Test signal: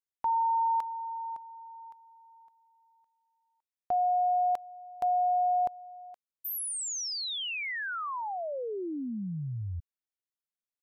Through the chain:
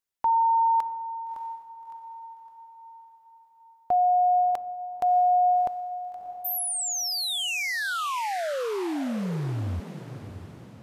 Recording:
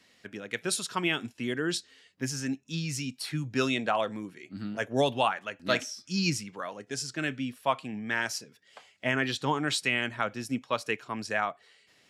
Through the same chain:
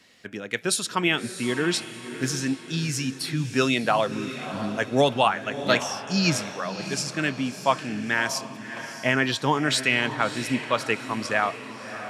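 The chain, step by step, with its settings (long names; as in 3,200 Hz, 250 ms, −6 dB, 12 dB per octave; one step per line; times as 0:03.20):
feedback delay with all-pass diffusion 632 ms, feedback 47%, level −11 dB
level +5.5 dB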